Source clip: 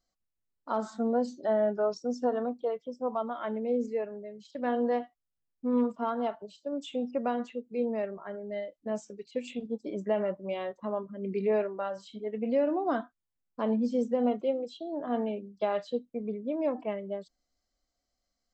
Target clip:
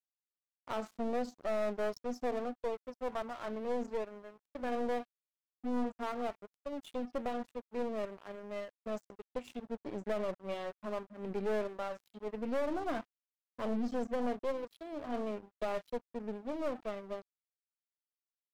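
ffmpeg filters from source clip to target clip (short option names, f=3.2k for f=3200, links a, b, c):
-af "aeval=exprs='sgn(val(0))*max(abs(val(0))-0.00596,0)':c=same,aeval=exprs='(tanh(31.6*val(0)+0.6)-tanh(0.6))/31.6':c=same"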